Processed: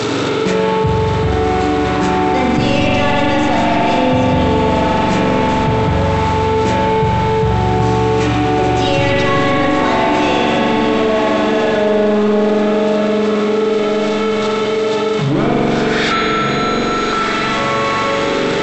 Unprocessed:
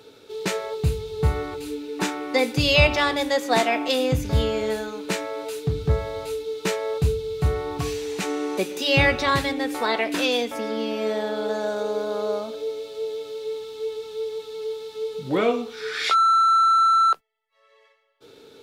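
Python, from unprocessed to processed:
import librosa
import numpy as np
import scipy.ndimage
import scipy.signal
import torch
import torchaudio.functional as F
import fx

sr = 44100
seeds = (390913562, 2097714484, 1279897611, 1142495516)

y = x + 0.5 * 10.0 ** (-23.5 / 20.0) * np.sign(x)
y = scipy.signal.sosfilt(scipy.signal.butter(4, 110.0, 'highpass', fs=sr, output='sos'), y)
y = fx.peak_eq(y, sr, hz=460.0, db=-7.5, octaves=0.36)
y = np.clip(y, -10.0 ** (-19.5 / 20.0), 10.0 ** (-19.5 / 20.0))
y = fx.brickwall_lowpass(y, sr, high_hz=8000.0)
y = fx.tilt_eq(y, sr, slope=-2.0)
y = fx.echo_diffused(y, sr, ms=1165, feedback_pct=56, wet_db=-8.5)
y = fx.rev_spring(y, sr, rt60_s=3.9, pass_ms=(43,), chirp_ms=70, drr_db=-5.0)
y = fx.env_flatten(y, sr, amount_pct=70)
y = F.gain(torch.from_numpy(y), -1.0).numpy()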